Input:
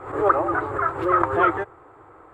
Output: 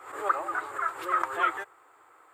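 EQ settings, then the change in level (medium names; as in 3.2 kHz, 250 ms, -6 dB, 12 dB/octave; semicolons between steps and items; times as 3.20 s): differentiator; +8.5 dB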